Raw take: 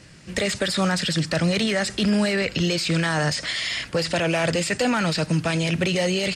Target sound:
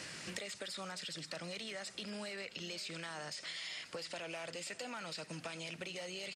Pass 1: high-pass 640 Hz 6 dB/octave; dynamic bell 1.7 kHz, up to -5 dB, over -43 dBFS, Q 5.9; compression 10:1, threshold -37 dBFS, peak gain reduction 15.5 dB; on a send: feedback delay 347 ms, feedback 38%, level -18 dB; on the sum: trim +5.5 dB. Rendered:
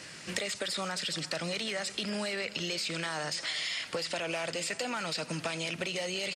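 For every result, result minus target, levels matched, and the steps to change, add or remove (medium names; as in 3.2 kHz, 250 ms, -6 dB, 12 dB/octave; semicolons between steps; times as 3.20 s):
compression: peak gain reduction -10 dB; echo 189 ms early
change: compression 10:1, threshold -48 dBFS, peak gain reduction 25.5 dB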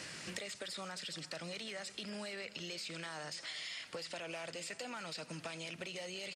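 echo 189 ms early
change: feedback delay 536 ms, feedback 38%, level -18 dB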